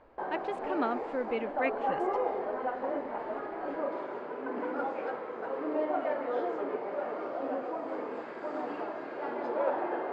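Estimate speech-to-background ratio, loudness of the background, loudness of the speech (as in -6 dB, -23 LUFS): -1.0 dB, -35.0 LUFS, -36.0 LUFS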